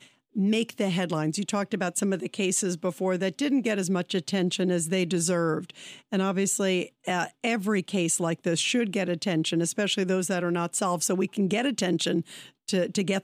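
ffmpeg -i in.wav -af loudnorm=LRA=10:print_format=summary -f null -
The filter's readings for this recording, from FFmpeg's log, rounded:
Input Integrated:    -26.8 LUFS
Input True Peak:     -13.0 dBTP
Input LRA:             0.9 LU
Input Threshold:     -36.9 LUFS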